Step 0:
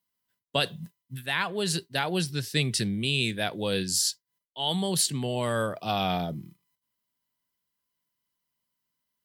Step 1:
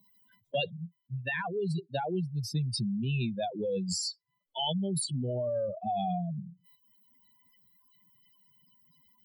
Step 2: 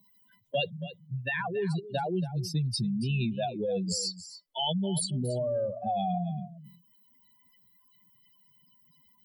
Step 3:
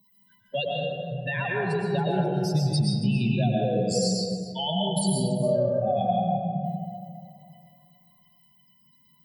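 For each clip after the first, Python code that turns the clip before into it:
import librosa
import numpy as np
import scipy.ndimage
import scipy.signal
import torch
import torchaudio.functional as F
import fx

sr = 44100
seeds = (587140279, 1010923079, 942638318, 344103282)

y1 = fx.spec_expand(x, sr, power=3.7)
y1 = fx.band_shelf(y1, sr, hz=1300.0, db=-8.0, octaves=1.1)
y1 = fx.band_squash(y1, sr, depth_pct=70)
y1 = F.gain(torch.from_numpy(y1), -2.5).numpy()
y2 = y1 + 10.0 ** (-14.5 / 20.0) * np.pad(y1, (int(279 * sr / 1000.0), 0))[:len(y1)]
y2 = F.gain(torch.from_numpy(y2), 1.5).numpy()
y3 = fx.rev_freeverb(y2, sr, rt60_s=2.3, hf_ratio=0.35, predelay_ms=80, drr_db=-3.5)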